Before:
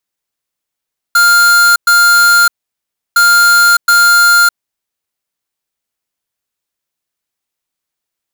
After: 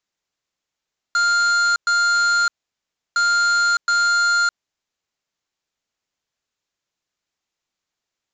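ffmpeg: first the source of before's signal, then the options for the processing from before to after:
-f lavfi -i "aevalsrc='0.447*(2*lt(mod(1400*t,1),0.5)-1)*clip(min(mod(mod(t,2.01),0.72),0.61-mod(mod(t,2.01),0.72))/0.005,0,1)*lt(mod(t,2.01),1.44)':duration=4.02:sample_rate=44100"
-af "asoftclip=type=tanh:threshold=-17dB,aresample=16000,aresample=44100"

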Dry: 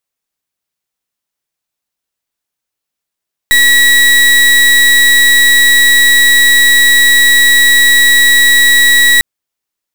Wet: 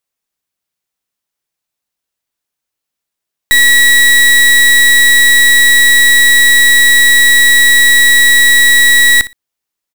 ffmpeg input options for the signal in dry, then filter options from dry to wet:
-f lavfi -i "aevalsrc='0.473*(2*lt(mod(1930*t,1),0.33)-1)':duration=5.7:sample_rate=44100"
-af "aecho=1:1:60|120:0.15|0.0239"

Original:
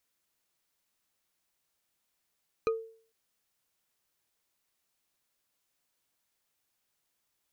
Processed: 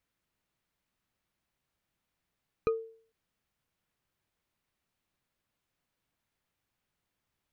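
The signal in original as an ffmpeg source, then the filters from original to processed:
-f lavfi -i "aevalsrc='0.075*pow(10,-3*t/0.48)*sin(2*PI*450*t)+0.0376*pow(10,-3*t/0.142)*sin(2*PI*1240.7*t)+0.0188*pow(10,-3*t/0.063)*sin(2*PI*2431.8*t)+0.00944*pow(10,-3*t/0.035)*sin(2*PI*4019.8*t)+0.00473*pow(10,-3*t/0.021)*sin(2*PI*6003*t)':duration=0.45:sample_rate=44100"
-af "bass=frequency=250:gain=9,treble=frequency=4000:gain=-10"

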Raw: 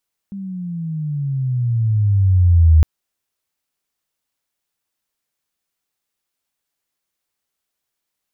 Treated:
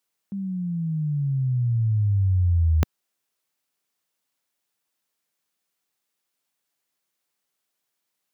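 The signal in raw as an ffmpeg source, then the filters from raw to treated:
-f lavfi -i "aevalsrc='pow(10,(-6+20*(t/2.51-1))/20)*sin(2*PI*200*2.51/(-16.5*log(2)/12)*(exp(-16.5*log(2)/12*t/2.51)-1))':duration=2.51:sample_rate=44100"
-af "highpass=130"

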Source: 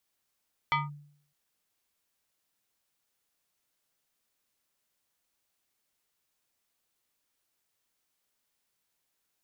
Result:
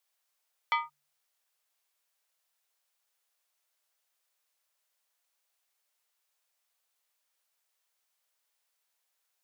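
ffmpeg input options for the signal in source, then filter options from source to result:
-f lavfi -i "aevalsrc='0.0891*pow(10,-3*t/0.61)*sin(2*PI*146*t+2.3*clip(1-t/0.18,0,1)*sin(2*PI*7.39*146*t))':duration=0.61:sample_rate=44100"
-af "highpass=frequency=510:width=0.5412,highpass=frequency=510:width=1.3066"

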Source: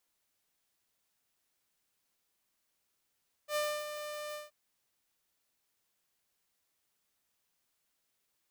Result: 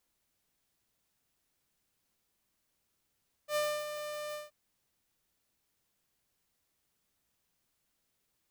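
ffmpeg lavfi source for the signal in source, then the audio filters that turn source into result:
-f lavfi -i "aevalsrc='0.0447*(2*mod(598*t,1)-1)':duration=1.025:sample_rate=44100,afade=type=in:duration=0.079,afade=type=out:start_time=0.079:duration=0.284:silence=0.335,afade=type=out:start_time=0.86:duration=0.165"
-af "lowshelf=frequency=310:gain=9.5"

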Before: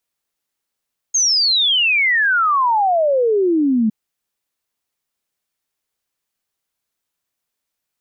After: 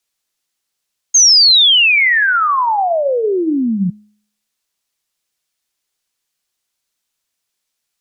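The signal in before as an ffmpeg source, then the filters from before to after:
-f lavfi -i "aevalsrc='0.237*clip(min(t,2.76-t)/0.01,0,1)*sin(2*PI*6600*2.76/log(210/6600)*(exp(log(210/6600)*t/2.76)-1))':duration=2.76:sample_rate=44100"
-af "equalizer=frequency=5500:width=0.4:gain=7.5,bandreject=frequency=125:width_type=h:width=4,bandreject=frequency=250:width_type=h:width=4,bandreject=frequency=375:width_type=h:width=4,bandreject=frequency=500:width_type=h:width=4,bandreject=frequency=625:width_type=h:width=4,bandreject=frequency=750:width_type=h:width=4,bandreject=frequency=875:width_type=h:width=4,bandreject=frequency=1000:width_type=h:width=4,bandreject=frequency=1125:width_type=h:width=4,bandreject=frequency=1250:width_type=h:width=4,bandreject=frequency=1375:width_type=h:width=4,bandreject=frequency=1500:width_type=h:width=4,bandreject=frequency=1625:width_type=h:width=4,bandreject=frequency=1750:width_type=h:width=4,bandreject=frequency=1875:width_type=h:width=4,bandreject=frequency=2000:width_type=h:width=4,bandreject=frequency=2125:width_type=h:width=4,bandreject=frequency=2250:width_type=h:width=4,bandreject=frequency=2375:width_type=h:width=4,bandreject=frequency=2500:width_type=h:width=4,afreqshift=-40"

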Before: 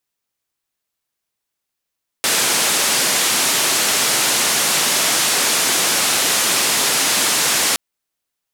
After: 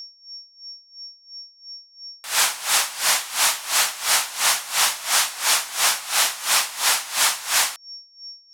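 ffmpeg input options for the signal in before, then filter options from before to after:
-f lavfi -i "anoisesrc=color=white:duration=5.52:sample_rate=44100:seed=1,highpass=frequency=180,lowpass=frequency=10000,volume=-8.7dB"
-af "lowshelf=frequency=560:width_type=q:width=1.5:gain=-13.5,aeval=exprs='val(0)+0.0224*sin(2*PI*5500*n/s)':channel_layout=same,aeval=exprs='val(0)*pow(10,-19*(0.5-0.5*cos(2*PI*2.9*n/s))/20)':channel_layout=same"

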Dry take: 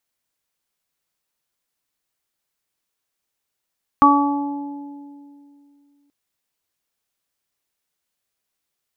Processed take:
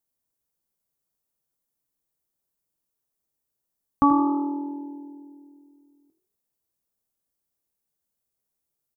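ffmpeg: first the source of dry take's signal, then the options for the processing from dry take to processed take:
-f lavfi -i "aevalsrc='0.211*pow(10,-3*t/2.67)*sin(2*PI*285*t)+0.0376*pow(10,-3*t/2)*sin(2*PI*570*t)+0.211*pow(10,-3*t/1.75)*sin(2*PI*855*t)+0.422*pow(10,-3*t/0.71)*sin(2*PI*1140*t)':duration=2.08:sample_rate=44100"
-filter_complex "[0:a]equalizer=frequency=2500:width_type=o:width=2.9:gain=-14.5,asplit=2[link_01][link_02];[link_02]adelay=15,volume=-11.5dB[link_03];[link_01][link_03]amix=inputs=2:normalize=0,asplit=2[link_04][link_05];[link_05]asplit=4[link_06][link_07][link_08][link_09];[link_06]adelay=81,afreqshift=41,volume=-12dB[link_10];[link_07]adelay=162,afreqshift=82,volume=-21.1dB[link_11];[link_08]adelay=243,afreqshift=123,volume=-30.2dB[link_12];[link_09]adelay=324,afreqshift=164,volume=-39.4dB[link_13];[link_10][link_11][link_12][link_13]amix=inputs=4:normalize=0[link_14];[link_04][link_14]amix=inputs=2:normalize=0"

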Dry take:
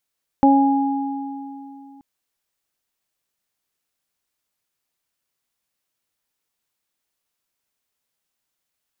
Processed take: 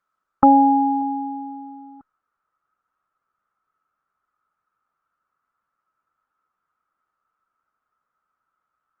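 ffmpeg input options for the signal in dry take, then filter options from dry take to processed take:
-f lavfi -i "aevalsrc='0.282*pow(10,-3*t/2.94)*sin(2*PI*275*t)+0.112*pow(10,-3*t/0.69)*sin(2*PI*550*t)+0.224*pow(10,-3*t/2.59)*sin(2*PI*825*t)':duration=1.58:sample_rate=44100"
-af "lowpass=frequency=1300:width_type=q:width=15" -ar 48000 -c:a libopus -b:a 20k

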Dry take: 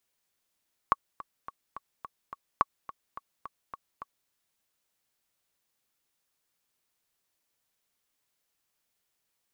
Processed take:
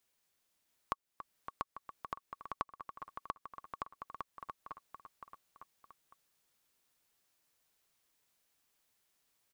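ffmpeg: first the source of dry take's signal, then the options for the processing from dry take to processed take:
-f lavfi -i "aevalsrc='pow(10,(-8.5-18*gte(mod(t,6*60/213),60/213))/20)*sin(2*PI*1120*mod(t,60/213))*exp(-6.91*mod(t,60/213)/0.03)':duration=3.38:sample_rate=44100"
-af "aecho=1:1:690|1208|1596|1887|2105:0.631|0.398|0.251|0.158|0.1,acompressor=threshold=-43dB:ratio=2"

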